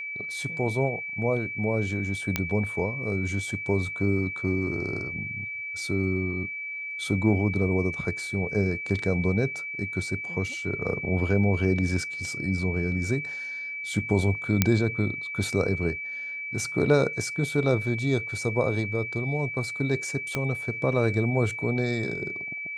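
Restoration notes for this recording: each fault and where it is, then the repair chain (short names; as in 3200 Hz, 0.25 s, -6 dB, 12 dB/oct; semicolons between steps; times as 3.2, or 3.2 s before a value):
tone 2300 Hz -32 dBFS
2.36 pop -9 dBFS
14.62 pop -4 dBFS
20.35 pop -14 dBFS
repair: de-click; notch 2300 Hz, Q 30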